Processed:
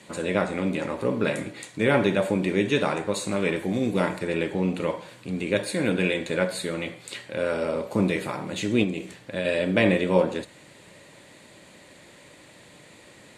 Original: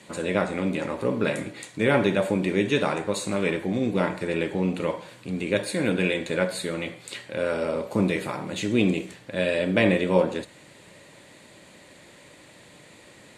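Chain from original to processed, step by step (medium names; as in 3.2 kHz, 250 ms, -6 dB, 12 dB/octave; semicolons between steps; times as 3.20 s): 3.56–4.19 s: treble shelf 7.1 kHz +10 dB; 8.83–9.45 s: compression, threshold -24 dBFS, peak gain reduction 6.5 dB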